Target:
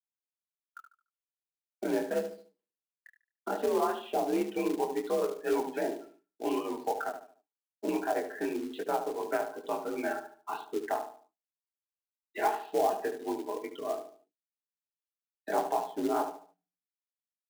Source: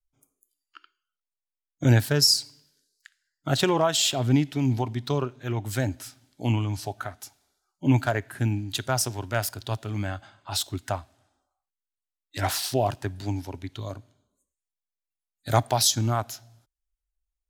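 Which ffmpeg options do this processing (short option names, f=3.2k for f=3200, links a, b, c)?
-filter_complex "[0:a]afftdn=nr=25:nf=-38,agate=range=-33dB:threshold=-52dB:ratio=3:detection=peak,aecho=1:1:5.3:0.58,acrossover=split=860[a][b];[b]acompressor=threshold=-40dB:ratio=12[c];[a][c]amix=inputs=2:normalize=0,alimiter=limit=-20dB:level=0:latency=1:release=198,highpass=f=250:t=q:w=0.5412,highpass=f=250:t=q:w=1.307,lowpass=f=2.8k:t=q:w=0.5176,lowpass=f=2.8k:t=q:w=0.7071,lowpass=f=2.8k:t=q:w=1.932,afreqshift=54,flanger=delay=20:depth=6.5:speed=2.7,asplit=2[d][e];[e]adelay=73,lowpass=f=1.6k:p=1,volume=-7.5dB,asplit=2[f][g];[g]adelay=73,lowpass=f=1.6k:p=1,volume=0.39,asplit=2[h][i];[i]adelay=73,lowpass=f=1.6k:p=1,volume=0.39,asplit=2[j][k];[k]adelay=73,lowpass=f=1.6k:p=1,volume=0.39[l];[d][f][h][j][l]amix=inputs=5:normalize=0,acrusher=bits=4:mode=log:mix=0:aa=0.000001,volume=6dB"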